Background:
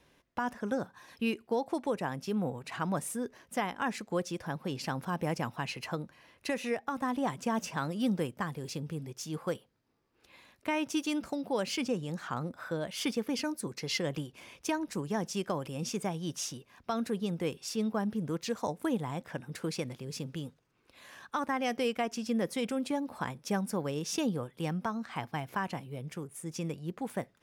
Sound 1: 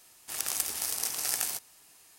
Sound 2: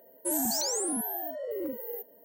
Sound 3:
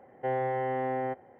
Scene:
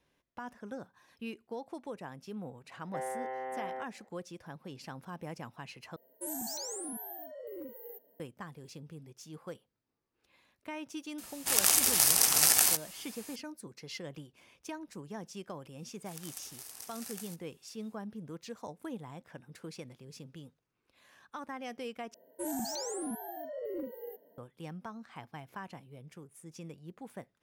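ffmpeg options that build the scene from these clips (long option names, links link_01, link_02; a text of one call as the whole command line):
ffmpeg -i bed.wav -i cue0.wav -i cue1.wav -i cue2.wav -filter_complex "[2:a]asplit=2[link_01][link_02];[1:a]asplit=2[link_03][link_04];[0:a]volume=-10dB[link_05];[3:a]highpass=460[link_06];[link_03]alimiter=level_in=10.5dB:limit=-1dB:release=50:level=0:latency=1[link_07];[link_02]highshelf=frequency=5800:gain=-11[link_08];[link_05]asplit=3[link_09][link_10][link_11];[link_09]atrim=end=5.964[link_12];[link_01]atrim=end=2.24,asetpts=PTS-STARTPTS,volume=-9.5dB[link_13];[link_10]atrim=start=8.196:end=22.144[link_14];[link_08]atrim=end=2.24,asetpts=PTS-STARTPTS,volume=-4dB[link_15];[link_11]atrim=start=24.376[link_16];[link_06]atrim=end=1.39,asetpts=PTS-STARTPTS,volume=-6.5dB,afade=type=in:duration=0.004:curve=hsin,afade=type=out:start_time=1.386:duration=0.004:curve=hsin,adelay=2700[link_17];[link_07]atrim=end=2.18,asetpts=PTS-STARTPTS,volume=-2.5dB,afade=type=in:duration=0.004:curve=hsin,afade=type=out:start_time=2.176:duration=0.004:curve=hsin,adelay=11180[link_18];[link_04]atrim=end=2.18,asetpts=PTS-STARTPTS,volume=-15.5dB,afade=type=in:duration=0.004:curve=hsin,afade=type=out:start_time=2.176:duration=0.004:curve=hsin,adelay=15770[link_19];[link_12][link_13]acrossfade=duration=0.004:curve1=hsin:curve2=hsin[link_20];[link_20][link_14]acrossfade=duration=0.004:curve1=hsin:curve2=hsin[link_21];[link_21][link_15]acrossfade=duration=0.004:curve1=hsin:curve2=hsin[link_22];[link_22][link_16]acrossfade=duration=0.004:curve1=hsin:curve2=hsin[link_23];[link_23][link_17][link_18][link_19]amix=inputs=4:normalize=0" out.wav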